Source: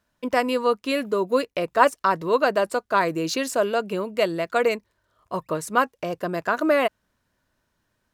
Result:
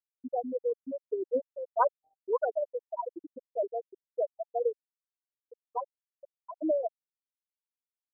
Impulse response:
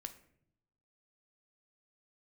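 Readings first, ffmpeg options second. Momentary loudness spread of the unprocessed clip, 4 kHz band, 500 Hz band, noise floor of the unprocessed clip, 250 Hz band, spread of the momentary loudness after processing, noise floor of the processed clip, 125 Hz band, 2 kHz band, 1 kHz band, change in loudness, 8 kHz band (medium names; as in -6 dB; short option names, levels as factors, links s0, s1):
8 LU, under -40 dB, -9.0 dB, -74 dBFS, -14.0 dB, 11 LU, under -85 dBFS, under -35 dB, -24.0 dB, -12.0 dB, -10.0 dB, under -40 dB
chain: -af "afftfilt=real='re*gte(hypot(re,im),0.631)':imag='im*gte(hypot(re,im),0.631)':win_size=1024:overlap=0.75,afftfilt=real='re*lt(b*sr/1024,780*pow(2000/780,0.5+0.5*sin(2*PI*1.3*pts/sr)))':imag='im*lt(b*sr/1024,780*pow(2000/780,0.5+0.5*sin(2*PI*1.3*pts/sr)))':win_size=1024:overlap=0.75,volume=0.447"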